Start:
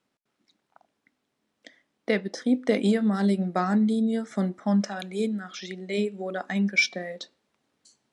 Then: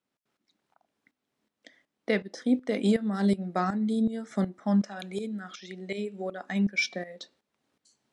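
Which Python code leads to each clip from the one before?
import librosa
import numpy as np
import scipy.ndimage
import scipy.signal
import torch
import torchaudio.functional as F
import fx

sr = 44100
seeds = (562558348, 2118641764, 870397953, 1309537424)

y = fx.tremolo_shape(x, sr, shape='saw_up', hz=2.7, depth_pct=75)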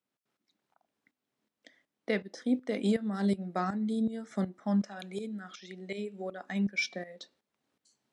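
y = scipy.signal.sosfilt(scipy.signal.butter(2, 61.0, 'highpass', fs=sr, output='sos'), x)
y = F.gain(torch.from_numpy(y), -4.0).numpy()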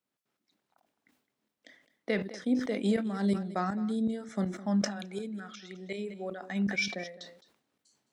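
y = x + 10.0 ** (-17.0 / 20.0) * np.pad(x, (int(212 * sr / 1000.0), 0))[:len(x)]
y = fx.sustainer(y, sr, db_per_s=96.0)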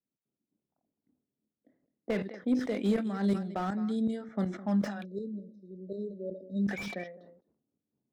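y = fx.env_lowpass(x, sr, base_hz=320.0, full_db=-26.0)
y = fx.spec_erase(y, sr, start_s=5.04, length_s=1.62, low_hz=630.0, high_hz=3700.0)
y = fx.slew_limit(y, sr, full_power_hz=30.0)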